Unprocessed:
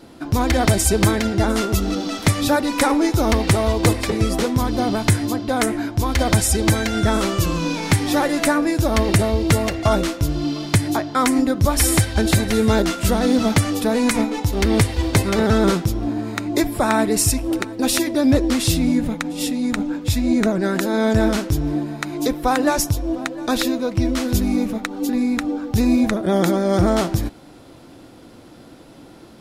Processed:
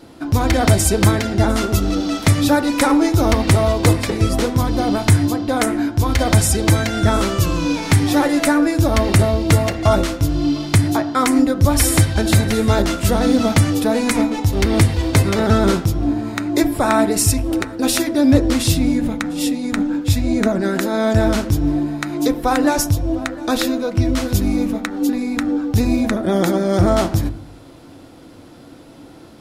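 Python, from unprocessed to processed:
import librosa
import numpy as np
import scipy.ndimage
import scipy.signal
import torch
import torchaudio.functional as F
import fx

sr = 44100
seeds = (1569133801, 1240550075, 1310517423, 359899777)

y = fx.rev_fdn(x, sr, rt60_s=0.63, lf_ratio=1.4, hf_ratio=0.25, size_ms=62.0, drr_db=10.5)
y = y * librosa.db_to_amplitude(1.0)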